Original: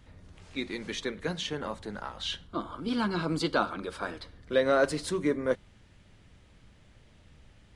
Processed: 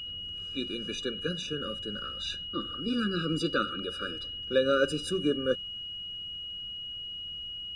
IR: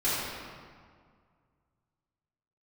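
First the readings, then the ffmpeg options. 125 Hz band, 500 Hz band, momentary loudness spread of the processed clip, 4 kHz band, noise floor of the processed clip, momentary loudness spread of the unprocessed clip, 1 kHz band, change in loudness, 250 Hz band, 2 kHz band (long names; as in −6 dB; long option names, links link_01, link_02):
0.0 dB, −0.5 dB, 9 LU, +8.0 dB, −40 dBFS, 12 LU, −3.5 dB, −0.5 dB, 0.0 dB, −1.0 dB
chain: -af "aeval=exprs='val(0)+0.0224*sin(2*PI*2900*n/s)':channel_layout=same,afftfilt=real='re*eq(mod(floor(b*sr/1024/580),2),0)':imag='im*eq(mod(floor(b*sr/1024/580),2),0)':win_size=1024:overlap=0.75"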